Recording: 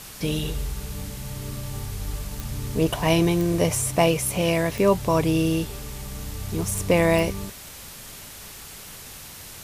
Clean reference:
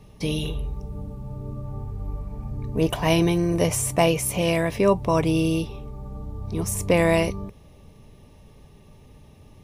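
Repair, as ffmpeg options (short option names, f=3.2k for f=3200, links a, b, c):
-af "adeclick=t=4,afwtdn=0.01"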